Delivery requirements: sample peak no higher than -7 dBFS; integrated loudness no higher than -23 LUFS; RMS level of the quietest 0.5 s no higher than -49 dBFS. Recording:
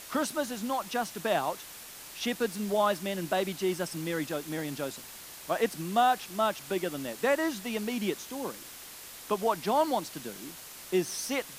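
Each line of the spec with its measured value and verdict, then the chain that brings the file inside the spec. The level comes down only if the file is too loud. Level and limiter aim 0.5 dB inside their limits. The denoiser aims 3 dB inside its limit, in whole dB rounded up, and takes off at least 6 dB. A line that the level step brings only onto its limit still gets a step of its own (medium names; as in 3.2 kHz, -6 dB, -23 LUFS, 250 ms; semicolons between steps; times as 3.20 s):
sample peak -13.5 dBFS: pass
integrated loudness -31.0 LUFS: pass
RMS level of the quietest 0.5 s -46 dBFS: fail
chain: noise reduction 6 dB, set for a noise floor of -46 dBFS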